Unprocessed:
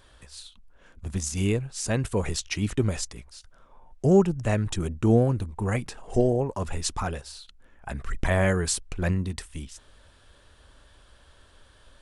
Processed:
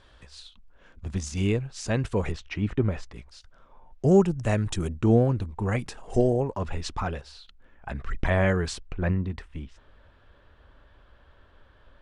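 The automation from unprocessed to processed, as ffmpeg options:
ffmpeg -i in.wav -af "asetnsamples=nb_out_samples=441:pad=0,asendcmd='2.32 lowpass f 2200;3.14 lowpass f 5100;4.07 lowpass f 10000;4.96 lowpass f 5400;5.79 lowpass f 9400;6.51 lowpass f 4000;8.87 lowpass f 2200',lowpass=5200" out.wav

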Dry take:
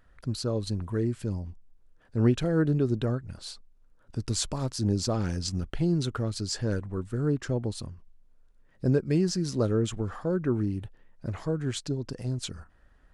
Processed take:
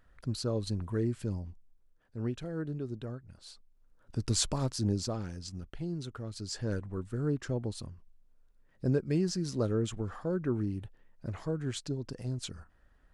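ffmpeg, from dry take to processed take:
ffmpeg -i in.wav -af "volume=16dB,afade=type=out:start_time=1.25:duration=0.93:silence=0.354813,afade=type=in:start_time=3.4:duration=1.04:silence=0.237137,afade=type=out:start_time=4.44:duration=0.86:silence=0.266073,afade=type=in:start_time=6.22:duration=0.51:silence=0.473151" out.wav

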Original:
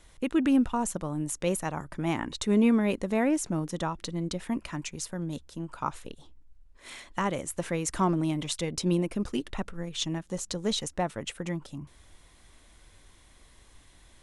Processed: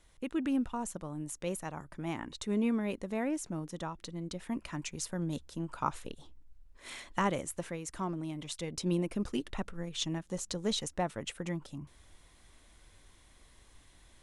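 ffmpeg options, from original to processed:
ffmpeg -i in.wav -af "volume=6dB,afade=type=in:start_time=4.27:duration=0.95:silence=0.446684,afade=type=out:start_time=7.25:duration=0.53:silence=0.334965,afade=type=in:start_time=8.32:duration=0.84:silence=0.446684" out.wav

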